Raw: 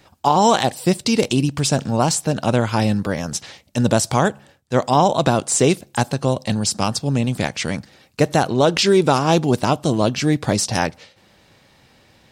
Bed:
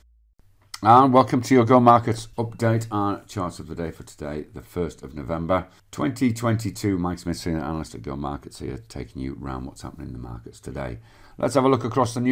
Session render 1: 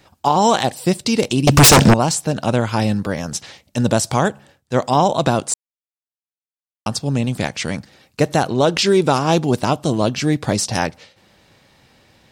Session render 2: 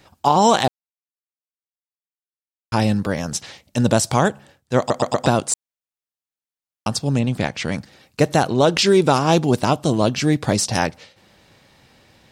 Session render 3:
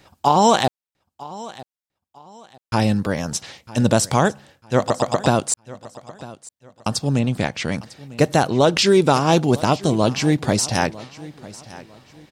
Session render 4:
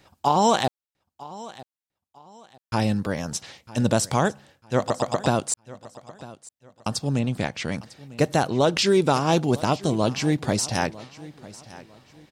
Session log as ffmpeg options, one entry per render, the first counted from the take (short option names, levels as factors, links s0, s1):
-filter_complex "[0:a]asettb=1/sr,asplit=3[s0][s1][s2];[s0]atrim=end=1.474[s3];[s1]atrim=start=1.47:end=1.94,asetpts=PTS-STARTPTS,afade=t=in:d=0.004:c=qsin,afade=t=out:st=0.466:d=0.004:c=qsin,aeval=exprs='0.596*sin(PI/2*6.31*val(0)/0.596)':c=same[s4];[s2]atrim=start=1.936[s5];[s3][s4]acrossfade=d=0.004:c1=hsin:c2=qsin[s6];[s6][s5]acrossfade=d=0.004:c1=qsin:c2=hsin,asplit=3[s7][s8][s9];[s7]atrim=end=5.54,asetpts=PTS-STARTPTS,afade=t=out:st=5.536:d=0.004:c=hsin[s10];[s8]atrim=start=5.54:end=6.86,asetpts=PTS-STARTPTS,volume=0[s11];[s9]atrim=start=6.86,asetpts=PTS-STARTPTS,afade=t=in:d=0.004:c=hsin[s12];[s10][s11][s12]concat=n=3:v=0:a=1"
-filter_complex "[0:a]asettb=1/sr,asplit=3[s0][s1][s2];[s0]atrim=end=7.194[s3];[s1]atrim=start=7.19:end=7.72,asetpts=PTS-STARTPTS,afade=t=in:d=0.004:c=qsin,afade=t=out:st=0.526:d=0.004:c=qsin,equalizer=f=11000:w=0.47:g=-9[s4];[s2]atrim=start=7.716[s5];[s3][s4]acrossfade=d=0.004:c1=hsin:c2=qsin[s6];[s6][s5]acrossfade=d=0.004:c1=qsin:c2=hsin,asplit=7[s7][s8][s9][s10][s11][s12][s13];[s7]atrim=end=0.68,asetpts=PTS-STARTPTS,afade=t=out:st=0.676:d=0.004:c=hsin[s14];[s8]atrim=start=0.68:end=2.72,asetpts=PTS-STARTPTS,volume=0[s15];[s9]atrim=start=2.72:end=4.902,asetpts=PTS-STARTPTS,afade=t=in:d=0.004:c=hsin[s16];[s10]atrim=start=4.778:end=4.902[s17];[s11]atrim=start=4.778:end=4.902[s18];[s12]atrim=start=4.778:end=4.902[s19];[s13]atrim=start=5.258[s20];[s14][s15][s16]concat=n=3:v=0:a=1[s21];[s21][s17]acrossfade=d=0.004:c1=hsin:c2=hsin[s22];[s22][s18]acrossfade=d=0.004:c1=hsin:c2=hsin[s23];[s23][s19]acrossfade=d=0.004:c1=hsin:c2=hsin[s24];[s24][s20]acrossfade=d=0.004:c1=hsin:c2=hsin"
-af "aecho=1:1:950|1900|2850:0.112|0.0337|0.0101"
-af "volume=0.596"